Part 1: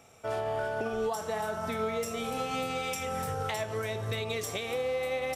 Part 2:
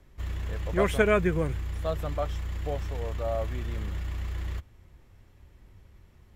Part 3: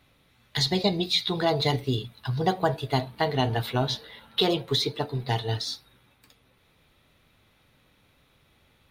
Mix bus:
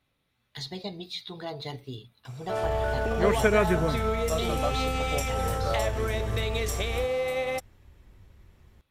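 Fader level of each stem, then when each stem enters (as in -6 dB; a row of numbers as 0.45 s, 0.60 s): +3.0 dB, 0.0 dB, -12.5 dB; 2.25 s, 2.45 s, 0.00 s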